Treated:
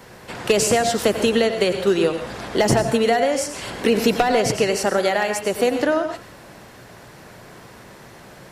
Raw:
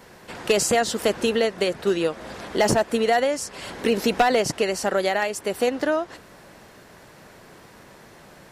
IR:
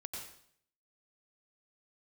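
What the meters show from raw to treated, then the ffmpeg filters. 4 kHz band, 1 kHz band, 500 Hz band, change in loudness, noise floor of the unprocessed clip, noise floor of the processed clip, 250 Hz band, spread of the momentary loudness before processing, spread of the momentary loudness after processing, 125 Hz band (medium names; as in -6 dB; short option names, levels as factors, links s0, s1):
+3.0 dB, +2.0 dB, +3.0 dB, +3.0 dB, -49 dBFS, -44 dBFS, +4.5 dB, 9 LU, 8 LU, +6.5 dB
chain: -filter_complex "[0:a]asplit=2[s0][s1];[1:a]atrim=start_sample=2205,afade=t=out:st=0.24:d=0.01,atrim=end_sample=11025[s2];[s1][s2]afir=irnorm=-1:irlink=0,volume=1[s3];[s0][s3]amix=inputs=2:normalize=0,acrossover=split=380[s4][s5];[s5]acompressor=threshold=0.158:ratio=6[s6];[s4][s6]amix=inputs=2:normalize=0,equalizer=f=120:t=o:w=0.23:g=7.5"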